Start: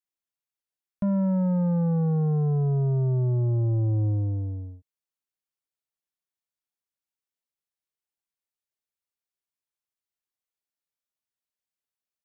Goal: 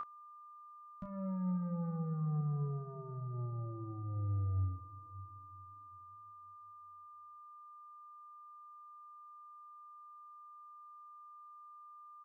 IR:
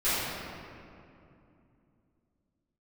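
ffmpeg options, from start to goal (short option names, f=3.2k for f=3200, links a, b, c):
-filter_complex "[0:a]alimiter=level_in=7dB:limit=-24dB:level=0:latency=1,volume=-7dB,equalizer=f=390:w=0.34:g=-7,asplit=2[a][b];[1:a]atrim=start_sample=2205[c];[b][c]afir=irnorm=-1:irlink=0,volume=-27dB[d];[a][d]amix=inputs=2:normalize=0,aeval=exprs='val(0)+0.0251*sin(2*PI*1200*n/s)':c=same,aecho=1:1:12|33:0.668|0.501,volume=-3.5dB"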